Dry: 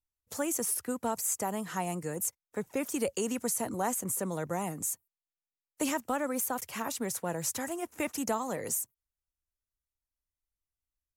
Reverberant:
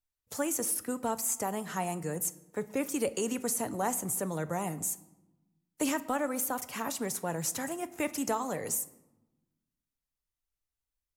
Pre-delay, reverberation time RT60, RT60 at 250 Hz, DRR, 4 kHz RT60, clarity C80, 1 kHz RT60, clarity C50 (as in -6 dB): 7 ms, 1.0 s, 1.6 s, 11.5 dB, 0.70 s, 19.5 dB, 1.0 s, 17.5 dB